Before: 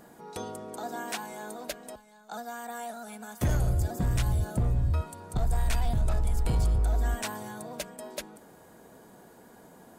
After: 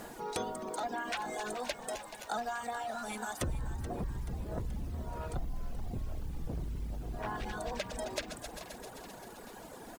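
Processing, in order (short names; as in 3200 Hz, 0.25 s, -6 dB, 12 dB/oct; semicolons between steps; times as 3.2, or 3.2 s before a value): regenerating reverse delay 0.131 s, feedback 79%, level -13 dB; treble ducked by the level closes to 420 Hz, closed at -22.5 dBFS; soft clip -28 dBFS, distortion -9 dB; bell 110 Hz -7 dB 2.2 oct; compressor, threshold -39 dBFS, peak gain reduction 8.5 dB; added noise pink -63 dBFS; reverb removal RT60 1.8 s; frequency-shifting echo 0.43 s, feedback 57%, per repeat +70 Hz, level -13.5 dB; gain +8 dB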